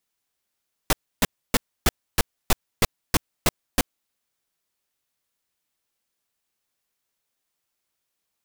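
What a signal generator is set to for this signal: noise bursts pink, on 0.03 s, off 0.29 s, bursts 10, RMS -17 dBFS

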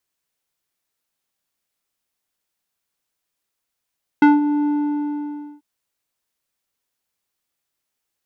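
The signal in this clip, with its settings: synth note square D4 12 dB/octave, low-pass 640 Hz, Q 1.3, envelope 1.5 oct, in 0.15 s, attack 3.8 ms, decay 0.18 s, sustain -10 dB, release 0.95 s, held 0.44 s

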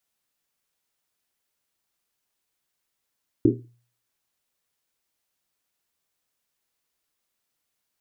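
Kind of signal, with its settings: Risset drum, pitch 120 Hz, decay 0.48 s, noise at 320 Hz, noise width 170 Hz, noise 70%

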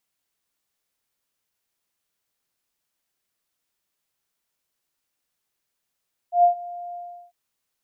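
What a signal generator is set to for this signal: ADSR sine 702 Hz, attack 116 ms, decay 107 ms, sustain -21 dB, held 0.63 s, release 368 ms -10.5 dBFS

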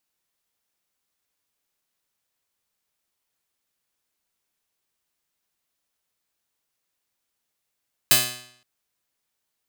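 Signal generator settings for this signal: plucked string B2, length 0.52 s, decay 0.67 s, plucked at 0.27, bright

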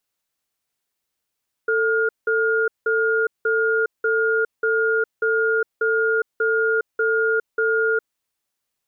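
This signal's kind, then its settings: cadence 445 Hz, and 1.42 kHz, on 0.41 s, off 0.18 s, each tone -19.5 dBFS 6.34 s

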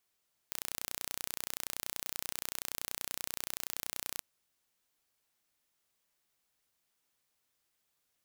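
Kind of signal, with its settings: pulse train 30.5 per s, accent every 0, -9.5 dBFS 3.68 s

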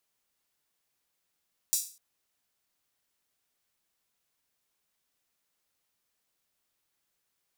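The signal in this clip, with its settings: open hi-hat length 0.25 s, high-pass 6.2 kHz, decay 0.38 s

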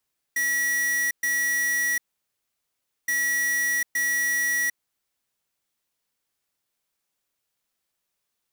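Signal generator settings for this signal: beep pattern square 1.93 kHz, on 0.75 s, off 0.12 s, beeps 2, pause 1.10 s, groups 2, -24 dBFS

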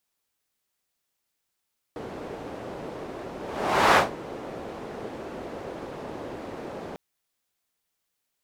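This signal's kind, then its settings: whoosh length 5.00 s, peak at 2.00 s, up 0.61 s, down 0.17 s, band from 450 Hz, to 1 kHz, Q 1.1, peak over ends 19.5 dB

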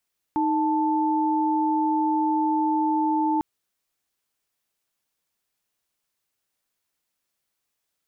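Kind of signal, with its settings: chord D#4/A5 sine, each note -22.5 dBFS 3.05 s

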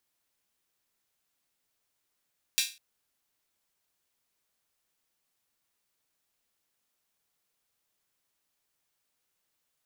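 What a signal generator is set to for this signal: open hi-hat length 0.20 s, high-pass 3 kHz, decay 0.31 s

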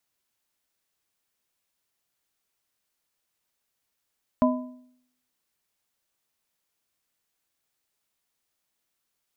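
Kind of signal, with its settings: metal hit plate, lowest mode 251 Hz, modes 3, decay 0.69 s, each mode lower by 3 dB, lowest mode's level -16.5 dB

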